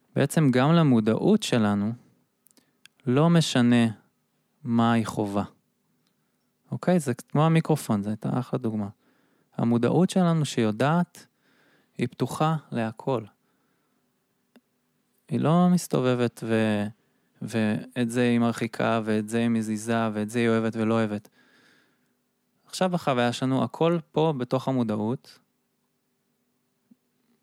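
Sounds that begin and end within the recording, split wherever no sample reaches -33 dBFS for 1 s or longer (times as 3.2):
6.72–13.22
15.31–21.25
22.73–25.16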